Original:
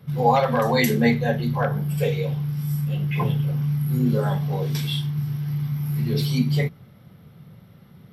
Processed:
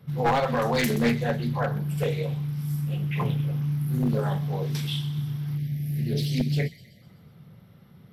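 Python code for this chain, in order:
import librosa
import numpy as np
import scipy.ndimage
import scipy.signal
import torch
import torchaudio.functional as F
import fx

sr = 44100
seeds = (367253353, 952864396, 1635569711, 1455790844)

p1 = np.minimum(x, 2.0 * 10.0 ** (-14.5 / 20.0) - x)
p2 = fx.spec_erase(p1, sr, start_s=5.58, length_s=1.44, low_hz=730.0, high_hz=1600.0)
p3 = p2 + fx.echo_wet_highpass(p2, sr, ms=126, feedback_pct=54, hz=2900.0, wet_db=-12.0, dry=0)
p4 = fx.doppler_dist(p3, sr, depth_ms=0.26)
y = F.gain(torch.from_numpy(p4), -3.5).numpy()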